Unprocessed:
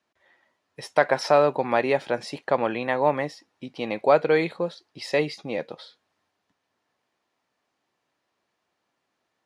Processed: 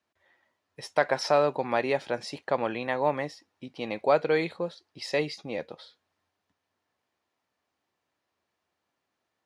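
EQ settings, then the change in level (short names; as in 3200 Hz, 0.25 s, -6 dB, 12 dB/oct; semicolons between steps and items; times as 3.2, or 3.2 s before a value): bell 83 Hz +10.5 dB 0.34 oct; dynamic EQ 5500 Hz, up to +4 dB, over -43 dBFS, Q 0.93; -4.5 dB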